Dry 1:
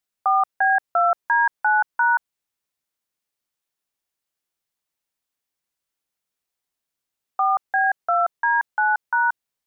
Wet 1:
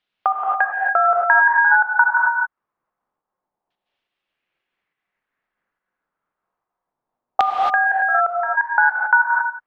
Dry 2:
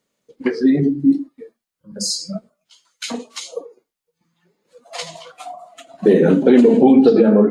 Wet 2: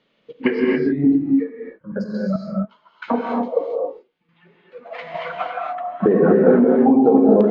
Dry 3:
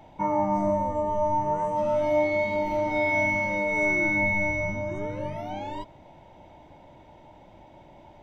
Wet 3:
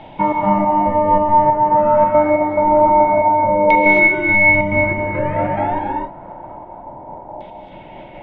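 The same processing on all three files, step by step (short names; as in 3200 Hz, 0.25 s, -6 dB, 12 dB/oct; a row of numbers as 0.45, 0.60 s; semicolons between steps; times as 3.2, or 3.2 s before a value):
bell 68 Hz -9 dB 0.93 oct; compressor 3:1, threshold -26 dBFS; air absorption 150 m; LFO low-pass saw down 0.27 Hz 790–3400 Hz; step gate "xxx.xx.." 140 bpm -12 dB; non-linear reverb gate 0.3 s rising, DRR -0.5 dB; normalise peaks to -1.5 dBFS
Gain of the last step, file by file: +8.5, +8.5, +12.5 dB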